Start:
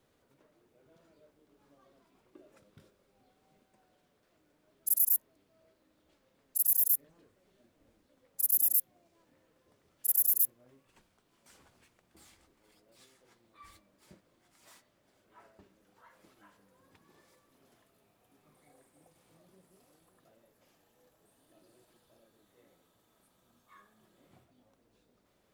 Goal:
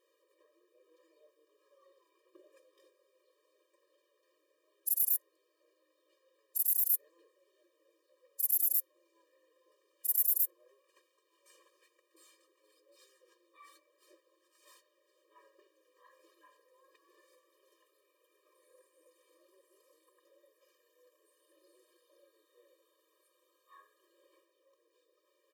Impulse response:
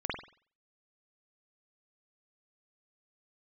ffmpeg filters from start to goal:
-af "aecho=1:1:3.8:0.41,acrusher=bits=8:mode=log:mix=0:aa=0.000001,afftfilt=real='re*eq(mod(floor(b*sr/1024/320),2),1)':imag='im*eq(mod(floor(b*sr/1024/320),2),1)':win_size=1024:overlap=0.75"

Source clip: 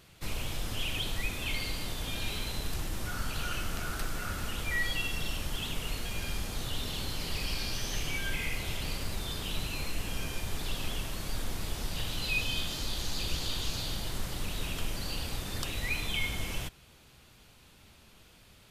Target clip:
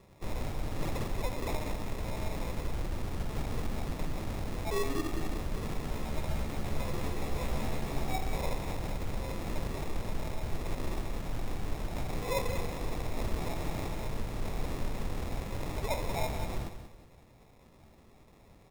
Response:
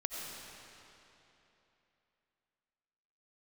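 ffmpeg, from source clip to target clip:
-filter_complex "[0:a]lowpass=4900,acrusher=samples=29:mix=1:aa=0.000001,asettb=1/sr,asplit=3[link_01][link_02][link_03];[link_01]atrim=end=5.914[link_04];[link_02]atrim=start=5.91:end=8.15,asetpts=PTS-STARTPTS,afade=type=in:duration=0.004:curve=qsin,afade=type=out:start_time=2.236:duration=0.004:curve=qsin,asplit=2[link_05][link_06];[link_06]adelay=14,volume=-3.5dB[link_07];[link_05][link_07]amix=inputs=2:normalize=0,atrim=end_sample=98784[link_08];[link_03]atrim=start=8.146[link_09];[link_04][link_08]acrossfade=duration=0.004:curve1=hsin:curve2=qsin[link_10];[link_10][link_09]acrossfade=duration=0.004:curve1=qsin:curve2=hsin,aecho=1:1:185|370|555|740:0.316|0.101|0.0324|0.0104"

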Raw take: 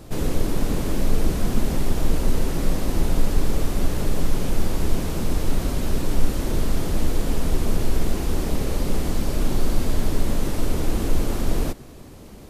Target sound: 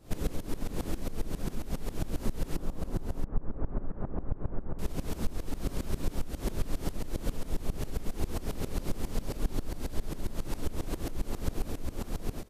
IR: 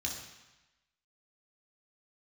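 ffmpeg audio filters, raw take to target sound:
-filter_complex "[0:a]asettb=1/sr,asplit=3[link_01][link_02][link_03];[link_01]atrim=end=2.564[link_04];[link_02]atrim=start=2.56:end=4.79,asetpts=PTS-STARTPTS,afade=type=in:duration=0.004:curve=qsin,afade=type=out:start_time=2.226:duration=0.004:curve=qsin,lowpass=frequency=1400:width=0.5412,lowpass=frequency=1400:width=1.3066[link_05];[link_03]atrim=start=4.786[link_06];[link_04][link_05]acrossfade=duration=0.004:curve1=hsin:curve2=qsin[link_07];[link_07][link_06]acrossfade=duration=0.004:curve1=qsin:curve2=hsin,aecho=1:1:686:0.531,acompressor=threshold=-21dB:ratio=6,aeval=exprs='val(0)*pow(10,-19*if(lt(mod(-7.4*n/s,1),2*abs(-7.4)/1000),1-mod(-7.4*n/s,1)/(2*abs(-7.4)/1000),(mod(-7.4*n/s,1)-2*abs(-7.4)/1000)/(1-2*abs(-7.4)/1000))/20)':channel_layout=same"

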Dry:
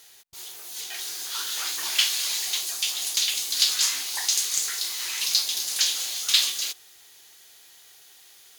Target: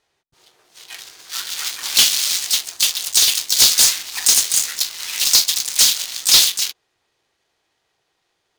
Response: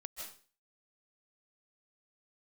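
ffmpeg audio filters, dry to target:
-filter_complex "[0:a]adynamicsmooth=sensitivity=4.5:basefreq=650,asplit=2[link_01][link_02];[link_02]asetrate=58866,aresample=44100,atempo=0.749154,volume=-6dB[link_03];[link_01][link_03]amix=inputs=2:normalize=0,crystalizer=i=9:c=0,asoftclip=type=hard:threshold=-1.5dB,volume=-4dB"

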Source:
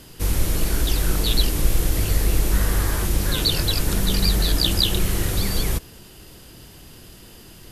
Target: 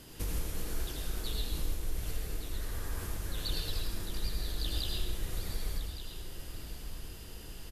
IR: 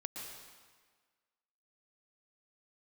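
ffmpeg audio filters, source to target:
-filter_complex "[0:a]asubboost=boost=3:cutoff=78,acompressor=threshold=-25dB:ratio=5,aecho=1:1:1163:0.282[link_01];[1:a]atrim=start_sample=2205,asetrate=66150,aresample=44100[link_02];[link_01][link_02]afir=irnorm=-1:irlink=0"

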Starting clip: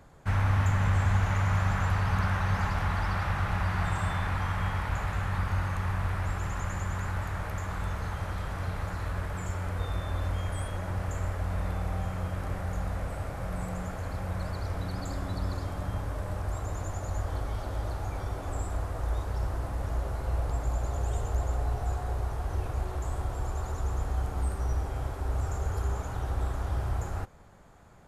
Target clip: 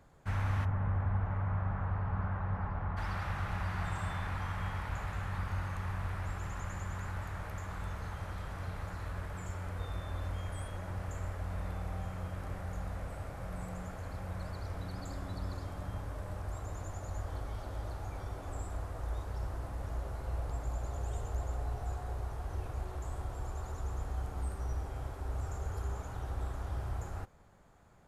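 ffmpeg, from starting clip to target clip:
ffmpeg -i in.wav -filter_complex "[0:a]asplit=3[link_01][link_02][link_03];[link_01]afade=type=out:start_time=0.64:duration=0.02[link_04];[link_02]lowpass=1200,afade=type=in:start_time=0.64:duration=0.02,afade=type=out:start_time=2.96:duration=0.02[link_05];[link_03]afade=type=in:start_time=2.96:duration=0.02[link_06];[link_04][link_05][link_06]amix=inputs=3:normalize=0,volume=-7dB" out.wav

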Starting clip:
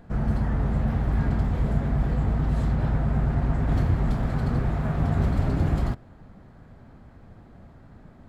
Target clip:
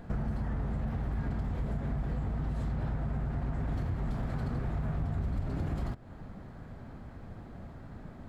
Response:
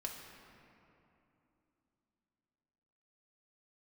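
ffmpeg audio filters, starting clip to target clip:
-filter_complex "[0:a]asettb=1/sr,asplit=3[link_01][link_02][link_03];[link_01]atrim=end=4.754[link_04];[link_02]atrim=start=4.75:end=5.47,asetpts=PTS-STARTPTS,afade=type=in:duration=0.004:curve=qsin,afade=type=out:start_time=0.716:duration=0.004:curve=qsin,lowshelf=frequency=120:gain=7[link_05];[link_03]atrim=start=5.466[link_06];[link_04][link_05]acrossfade=duration=0.004:curve1=hsin:curve2=qsin[link_07];[link_07][link_06]acrossfade=duration=0.004:curve1=qsin:curve2=hsin,asplit=2[link_08][link_09];[link_09]alimiter=limit=-18.5dB:level=0:latency=1:release=16,volume=0dB[link_10];[link_08][link_10]amix=inputs=2:normalize=0,acompressor=threshold=-27dB:ratio=6,volume=-3.5dB"

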